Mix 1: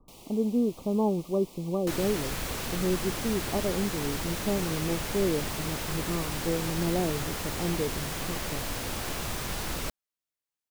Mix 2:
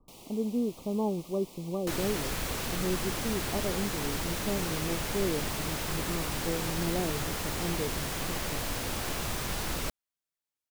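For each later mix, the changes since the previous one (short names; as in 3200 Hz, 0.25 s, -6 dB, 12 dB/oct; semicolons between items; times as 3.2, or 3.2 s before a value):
speech -4.0 dB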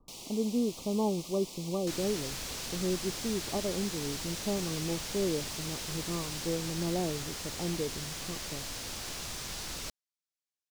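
second sound -10.0 dB; master: add bell 5500 Hz +10.5 dB 1.9 oct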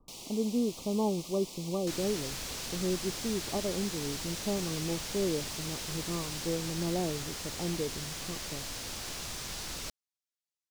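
none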